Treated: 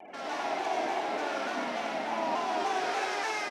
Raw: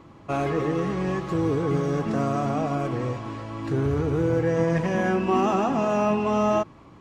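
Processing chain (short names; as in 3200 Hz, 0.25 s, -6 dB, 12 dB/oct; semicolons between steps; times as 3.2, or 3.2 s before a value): dynamic EQ 2000 Hz, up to -6 dB, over -50 dBFS, Q 3; AGC gain up to 14.5 dB; limiter -12.5 dBFS, peak gain reduction 11 dB; compressor 6:1, threshold -34 dBFS, peak gain reduction 16.5 dB; loudest bins only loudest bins 16; harmoniser -5 st -8 dB, +4 st -8 dB; hard clip -38.5 dBFS, distortion -7 dB; speaker cabinet 170–5800 Hz, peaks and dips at 250 Hz -8 dB, 360 Hz +8 dB, 570 Hz -4 dB, 2900 Hz +6 dB; outdoor echo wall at 19 m, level -6 dB; reverb RT60 4.0 s, pre-delay 0.161 s, DRR -7 dB; speed mistake 7.5 ips tape played at 15 ips; shaped vibrato saw down 3.4 Hz, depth 100 cents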